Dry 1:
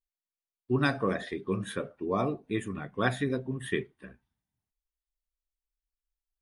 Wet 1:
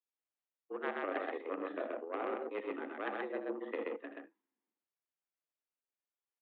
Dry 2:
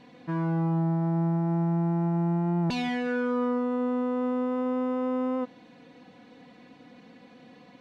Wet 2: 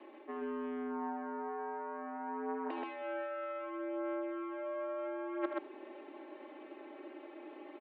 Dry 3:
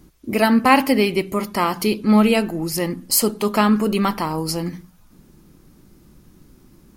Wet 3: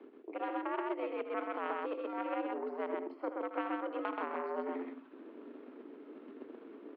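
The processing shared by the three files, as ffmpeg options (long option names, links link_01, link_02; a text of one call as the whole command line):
ffmpeg -i in.wav -filter_complex "[0:a]acrossover=split=430|1500[link_01][link_02][link_03];[link_01]acompressor=threshold=-33dB:ratio=4[link_04];[link_02]acompressor=threshold=-28dB:ratio=4[link_05];[link_03]acompressor=threshold=-43dB:ratio=4[link_06];[link_04][link_05][link_06]amix=inputs=3:normalize=0,highshelf=frequency=2500:gain=-10,areverse,acompressor=threshold=-41dB:ratio=8,areverse,aeval=exprs='0.0237*(cos(1*acos(clip(val(0)/0.0237,-1,1)))-cos(1*PI/2))+0.00596*(cos(3*acos(clip(val(0)/0.0237,-1,1)))-cos(3*PI/2))+0.00119*(cos(4*acos(clip(val(0)/0.0237,-1,1)))-cos(4*PI/2))+0.000473*(cos(5*acos(clip(val(0)/0.0237,-1,1)))-cos(5*PI/2))':channel_layout=same,aecho=1:1:78.72|128.3:0.316|0.794,highpass=frequency=180:width_type=q:width=0.5412,highpass=frequency=180:width_type=q:width=1.307,lowpass=frequency=3200:width_type=q:width=0.5176,lowpass=frequency=3200:width_type=q:width=0.7071,lowpass=frequency=3200:width_type=q:width=1.932,afreqshift=89,volume=9dB" out.wav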